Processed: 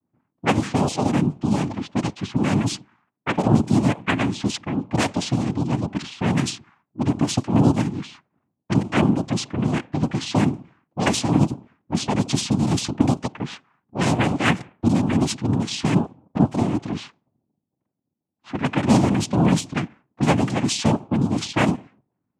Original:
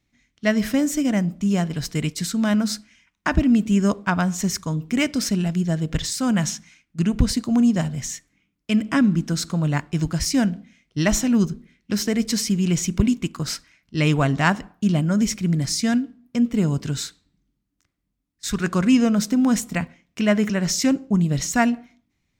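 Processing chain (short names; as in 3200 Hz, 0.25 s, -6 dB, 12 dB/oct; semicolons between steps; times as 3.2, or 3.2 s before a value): noise vocoder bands 4; low-pass opened by the level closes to 650 Hz, open at -16 dBFS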